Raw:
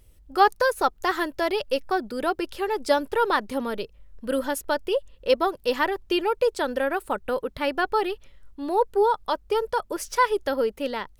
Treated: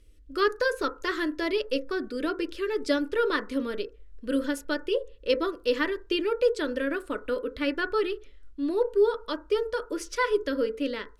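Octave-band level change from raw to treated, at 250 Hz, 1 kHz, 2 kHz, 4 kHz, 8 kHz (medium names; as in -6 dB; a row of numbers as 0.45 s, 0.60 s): +1.0 dB, -10.5 dB, -2.5 dB, -2.0 dB, -6.0 dB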